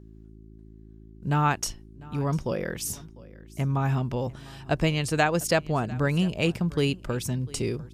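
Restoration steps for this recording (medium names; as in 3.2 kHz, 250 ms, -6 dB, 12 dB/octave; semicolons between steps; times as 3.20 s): de-hum 54 Hz, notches 7; inverse comb 699 ms -21.5 dB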